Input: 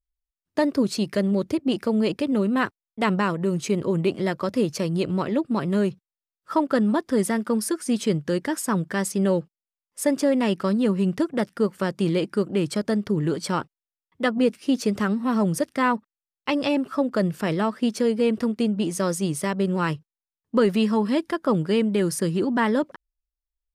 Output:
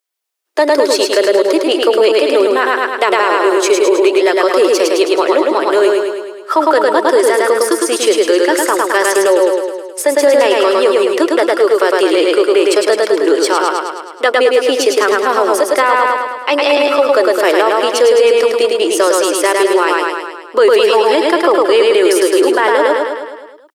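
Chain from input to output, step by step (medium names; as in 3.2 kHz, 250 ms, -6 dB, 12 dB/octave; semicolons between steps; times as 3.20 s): steep high-pass 350 Hz 48 dB/octave; de-esser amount 55%; on a send: feedback delay 106 ms, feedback 59%, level -3.5 dB; on the sum: loudness maximiser +17 dB; trim -1 dB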